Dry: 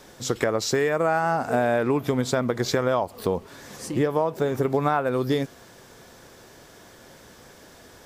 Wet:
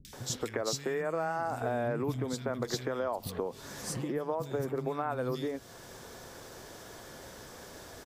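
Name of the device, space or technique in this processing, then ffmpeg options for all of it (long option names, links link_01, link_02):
upward and downward compression: -filter_complex "[0:a]asettb=1/sr,asplit=3[link_01][link_02][link_03];[link_01]atrim=end=1.614[link_04];[link_02]atrim=start=1.61:end=2.29,asetpts=PTS-STARTPTS,afade=type=in:duration=0.004:curve=qsin,afade=type=out:start_time=0.676:duration=0.004:curve=qsin,equalizer=frequency=86:width=0.45:gain=7[link_05];[link_03]atrim=start=2.286[link_06];[link_04][link_05]acrossfade=duration=0.004:curve1=hsin:curve2=qsin[link_07];[link_07][link_06]acrossfade=duration=0.004:curve1=qsin:curve2=hsin,acompressor=mode=upward:threshold=-42dB:ratio=2.5,acompressor=threshold=-32dB:ratio=3,acrossover=split=210|2400[link_08][link_09][link_10];[link_10]adelay=50[link_11];[link_09]adelay=130[link_12];[link_08][link_12][link_11]amix=inputs=3:normalize=0"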